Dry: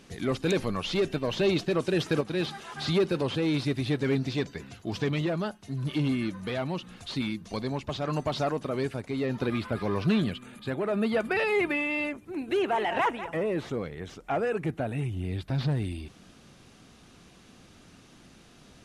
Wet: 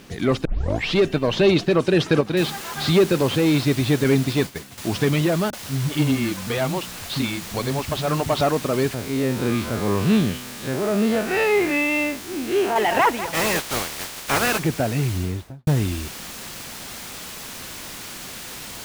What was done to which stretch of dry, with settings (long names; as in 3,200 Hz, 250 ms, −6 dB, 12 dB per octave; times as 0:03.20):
0:00.45: tape start 0.50 s
0:02.37: noise floor change −62 dB −41 dB
0:04.04–0:04.78: downward expander −33 dBFS
0:05.50–0:08.41: multiband delay without the direct sound lows, highs 30 ms, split 250 Hz
0:08.94–0:12.76: spectrum smeared in time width 82 ms
0:13.33–0:14.58: ceiling on every frequency bin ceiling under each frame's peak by 22 dB
0:15.11–0:15.67: fade out and dull
whole clip: high-shelf EQ 9,400 Hz −8.5 dB; level +8.5 dB